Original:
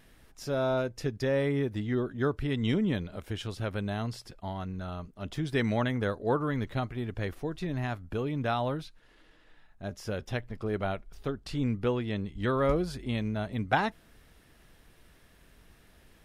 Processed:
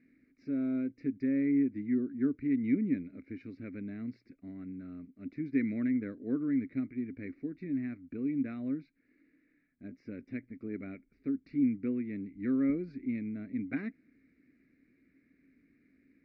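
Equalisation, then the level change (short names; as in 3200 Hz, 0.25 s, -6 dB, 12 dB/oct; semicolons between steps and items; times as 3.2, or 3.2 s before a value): vowel filter i; Butterworth band-stop 3200 Hz, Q 1.6; air absorption 280 m; +8.0 dB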